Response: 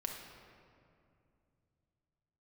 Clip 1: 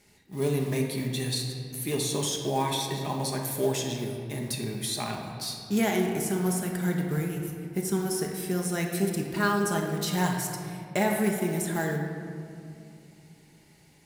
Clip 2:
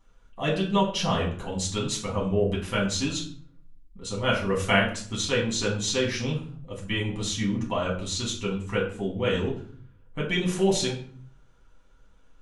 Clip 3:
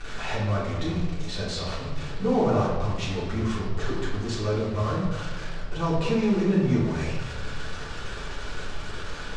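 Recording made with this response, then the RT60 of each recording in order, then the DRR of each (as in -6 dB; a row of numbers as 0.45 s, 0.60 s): 1; 2.5 s, 0.50 s, 1.3 s; 0.5 dB, -4.5 dB, -8.0 dB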